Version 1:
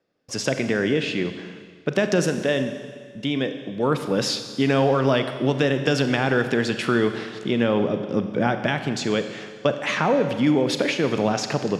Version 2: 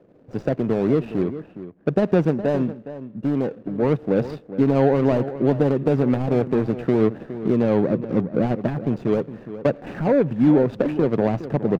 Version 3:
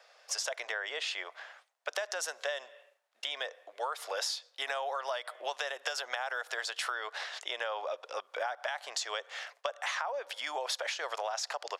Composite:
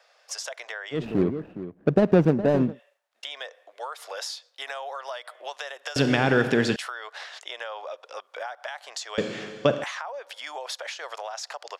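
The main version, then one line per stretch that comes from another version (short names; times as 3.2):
3
0.99–2.72 from 2, crossfade 0.16 s
5.96–6.76 from 1
9.18–9.84 from 1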